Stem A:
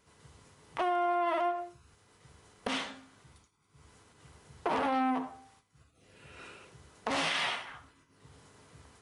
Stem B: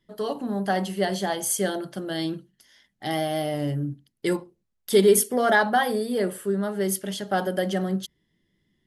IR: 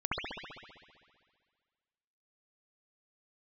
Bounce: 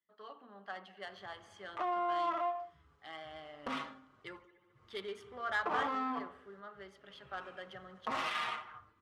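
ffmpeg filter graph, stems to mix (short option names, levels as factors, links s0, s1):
-filter_complex "[0:a]highshelf=f=4400:g=12,asplit=2[s0][s1];[s1]adelay=6,afreqshift=-0.27[s2];[s0][s2]amix=inputs=2:normalize=1,adelay=1000,volume=0.631[s3];[1:a]bandpass=f=3100:t=q:w=1:csg=0,volume=0.335,asplit=2[s4][s5];[s5]volume=0.0944[s6];[2:a]atrim=start_sample=2205[s7];[s6][s7]afir=irnorm=-1:irlink=0[s8];[s3][s4][s8]amix=inputs=3:normalize=0,adynamicsmooth=sensitivity=3:basefreq=1900,equalizer=f=1200:w=3.7:g=10.5"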